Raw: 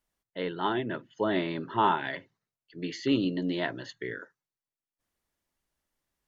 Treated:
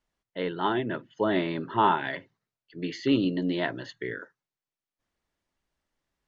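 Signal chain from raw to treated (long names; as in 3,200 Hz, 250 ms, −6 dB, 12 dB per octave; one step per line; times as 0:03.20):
high-frequency loss of the air 71 metres
level +2.5 dB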